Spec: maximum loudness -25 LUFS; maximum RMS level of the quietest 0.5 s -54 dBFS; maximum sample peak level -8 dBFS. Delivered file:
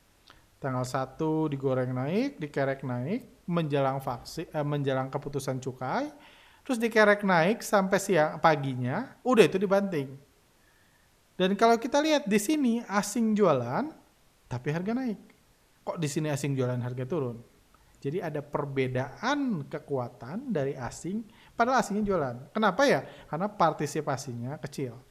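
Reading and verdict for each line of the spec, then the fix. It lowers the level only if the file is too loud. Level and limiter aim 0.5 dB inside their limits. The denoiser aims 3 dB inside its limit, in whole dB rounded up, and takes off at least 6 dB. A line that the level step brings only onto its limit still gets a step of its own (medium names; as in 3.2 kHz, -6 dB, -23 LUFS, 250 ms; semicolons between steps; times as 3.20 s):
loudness -28.5 LUFS: pass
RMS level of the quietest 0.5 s -63 dBFS: pass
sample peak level -6.0 dBFS: fail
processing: peak limiter -8.5 dBFS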